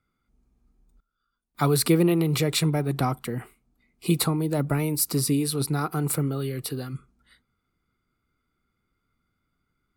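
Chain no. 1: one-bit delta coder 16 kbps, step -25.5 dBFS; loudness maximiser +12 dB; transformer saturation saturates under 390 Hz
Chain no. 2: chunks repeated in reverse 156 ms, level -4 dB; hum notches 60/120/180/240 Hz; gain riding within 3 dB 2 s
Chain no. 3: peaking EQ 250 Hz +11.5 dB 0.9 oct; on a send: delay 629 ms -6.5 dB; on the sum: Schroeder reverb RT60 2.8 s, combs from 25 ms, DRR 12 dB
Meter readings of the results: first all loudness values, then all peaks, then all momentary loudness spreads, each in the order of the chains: -18.0 LUFS, -24.0 LUFS, -19.5 LUFS; -1.0 dBFS, -8.0 dBFS, -3.5 dBFS; 11 LU, 12 LU, 12 LU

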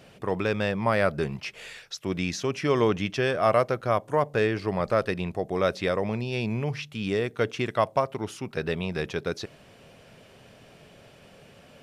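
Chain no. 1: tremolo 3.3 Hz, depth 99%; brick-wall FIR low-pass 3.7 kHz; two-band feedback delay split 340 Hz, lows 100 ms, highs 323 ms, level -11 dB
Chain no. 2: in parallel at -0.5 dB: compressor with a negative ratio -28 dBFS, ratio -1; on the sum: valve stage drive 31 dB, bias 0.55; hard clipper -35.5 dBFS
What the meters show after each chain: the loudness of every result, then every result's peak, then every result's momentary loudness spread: -31.5 LUFS, -38.0 LUFS; -10.5 dBFS, -35.5 dBFS; 11 LU, 11 LU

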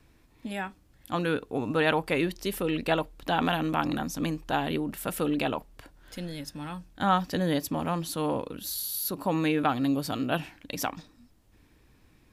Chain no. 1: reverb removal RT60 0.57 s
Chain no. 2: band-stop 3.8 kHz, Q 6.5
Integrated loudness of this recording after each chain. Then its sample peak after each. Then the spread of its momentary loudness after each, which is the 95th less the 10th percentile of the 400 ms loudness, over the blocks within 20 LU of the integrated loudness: -30.5 LUFS, -29.5 LUFS; -11.0 dBFS, -10.0 dBFS; 12 LU, 12 LU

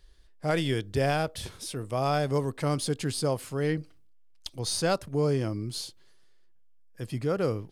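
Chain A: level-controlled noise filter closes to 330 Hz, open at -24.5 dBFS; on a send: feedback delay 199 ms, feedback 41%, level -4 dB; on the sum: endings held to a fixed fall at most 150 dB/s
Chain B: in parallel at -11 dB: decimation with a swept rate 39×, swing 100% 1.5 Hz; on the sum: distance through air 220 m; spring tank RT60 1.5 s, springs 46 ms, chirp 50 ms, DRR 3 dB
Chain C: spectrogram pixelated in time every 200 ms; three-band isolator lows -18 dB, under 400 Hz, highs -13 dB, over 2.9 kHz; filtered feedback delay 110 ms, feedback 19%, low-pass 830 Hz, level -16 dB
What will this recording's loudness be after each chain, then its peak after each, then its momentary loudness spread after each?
-28.5 LUFS, -27.5 LUFS, -36.5 LUFS; -12.5 dBFS, -11.5 dBFS, -19.5 dBFS; 14 LU, 13 LU, 16 LU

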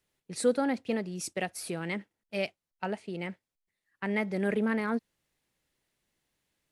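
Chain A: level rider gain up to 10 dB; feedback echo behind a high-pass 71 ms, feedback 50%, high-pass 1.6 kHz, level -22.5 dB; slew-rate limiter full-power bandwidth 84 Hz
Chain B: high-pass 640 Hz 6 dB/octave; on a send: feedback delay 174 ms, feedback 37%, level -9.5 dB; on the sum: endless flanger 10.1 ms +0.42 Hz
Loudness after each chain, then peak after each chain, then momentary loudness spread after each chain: -24.5 LUFS, -39.0 LUFS; -9.0 dBFS, -20.5 dBFS; 10 LU, 11 LU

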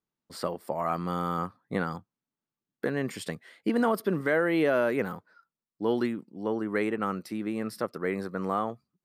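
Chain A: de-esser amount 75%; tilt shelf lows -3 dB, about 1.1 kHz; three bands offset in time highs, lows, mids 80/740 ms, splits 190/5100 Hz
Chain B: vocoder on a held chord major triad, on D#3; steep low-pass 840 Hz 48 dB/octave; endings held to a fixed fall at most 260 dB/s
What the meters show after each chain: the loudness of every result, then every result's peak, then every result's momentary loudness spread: -32.0 LUFS, -32.0 LUFS; -15.0 dBFS, -14.0 dBFS; 19 LU, 12 LU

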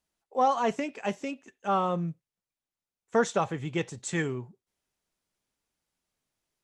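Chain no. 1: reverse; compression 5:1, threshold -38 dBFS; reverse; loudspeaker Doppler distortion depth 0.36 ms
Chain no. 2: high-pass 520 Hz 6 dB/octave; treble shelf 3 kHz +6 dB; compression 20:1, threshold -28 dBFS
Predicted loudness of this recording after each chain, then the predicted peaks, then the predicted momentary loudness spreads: -42.0 LUFS, -35.5 LUFS; -25.5 dBFS, -17.5 dBFS; 7 LU, 7 LU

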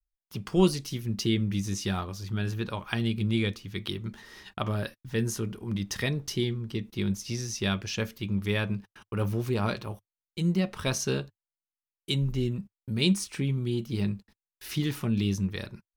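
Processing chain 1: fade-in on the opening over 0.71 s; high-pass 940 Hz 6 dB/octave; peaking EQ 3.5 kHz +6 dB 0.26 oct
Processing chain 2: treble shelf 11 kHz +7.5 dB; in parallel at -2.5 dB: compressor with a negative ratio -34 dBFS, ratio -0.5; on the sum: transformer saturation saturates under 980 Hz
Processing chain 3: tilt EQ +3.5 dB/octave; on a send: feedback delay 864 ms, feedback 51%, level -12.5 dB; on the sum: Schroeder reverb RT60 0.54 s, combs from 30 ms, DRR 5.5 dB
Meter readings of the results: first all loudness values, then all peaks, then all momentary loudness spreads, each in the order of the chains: -35.0 LUFS, -30.5 LUFS, -28.5 LUFS; -9.5 dBFS, -9.5 dBFS, -6.0 dBFS; 12 LU, 7 LU, 12 LU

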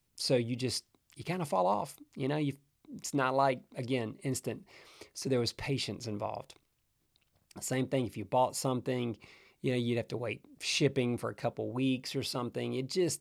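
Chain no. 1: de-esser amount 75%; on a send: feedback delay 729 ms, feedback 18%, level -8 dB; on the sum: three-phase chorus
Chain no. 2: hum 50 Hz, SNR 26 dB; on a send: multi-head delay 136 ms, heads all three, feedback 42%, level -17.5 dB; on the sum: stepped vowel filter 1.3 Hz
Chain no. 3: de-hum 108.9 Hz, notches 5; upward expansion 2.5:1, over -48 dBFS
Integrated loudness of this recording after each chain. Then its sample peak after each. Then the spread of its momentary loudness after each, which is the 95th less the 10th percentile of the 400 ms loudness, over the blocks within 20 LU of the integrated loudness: -37.0 LUFS, -44.5 LUFS, -39.5 LUFS; -16.5 dBFS, -24.5 dBFS, -16.5 dBFS; 13 LU, 16 LU, 20 LU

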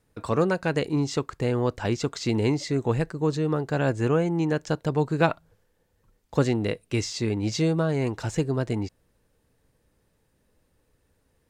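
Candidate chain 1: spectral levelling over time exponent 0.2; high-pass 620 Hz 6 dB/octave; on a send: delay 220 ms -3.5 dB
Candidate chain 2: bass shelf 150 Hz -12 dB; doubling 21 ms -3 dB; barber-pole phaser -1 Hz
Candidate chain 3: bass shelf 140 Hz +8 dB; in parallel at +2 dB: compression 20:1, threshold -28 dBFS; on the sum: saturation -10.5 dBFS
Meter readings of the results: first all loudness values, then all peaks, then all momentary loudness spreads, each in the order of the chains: -21.0 LUFS, -30.0 LUFS, -22.5 LUFS; -2.0 dBFS, -9.5 dBFS, -10.5 dBFS; 7 LU, 6 LU, 4 LU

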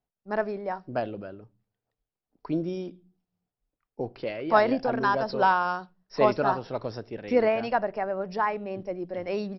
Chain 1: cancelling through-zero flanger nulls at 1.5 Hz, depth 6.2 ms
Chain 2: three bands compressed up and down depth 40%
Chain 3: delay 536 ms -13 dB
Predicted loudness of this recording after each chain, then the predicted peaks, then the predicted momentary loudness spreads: -30.5 LUFS, -28.0 LUFS, -27.5 LUFS; -8.5 dBFS, -9.0 dBFS, -7.0 dBFS; 14 LU, 11 LU, 17 LU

